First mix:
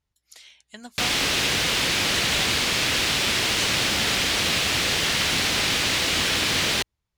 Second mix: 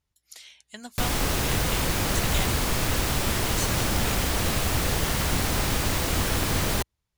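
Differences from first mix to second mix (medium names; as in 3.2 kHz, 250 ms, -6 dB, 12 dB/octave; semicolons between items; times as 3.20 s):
background: remove frequency weighting D; master: add treble shelf 8.8 kHz +7.5 dB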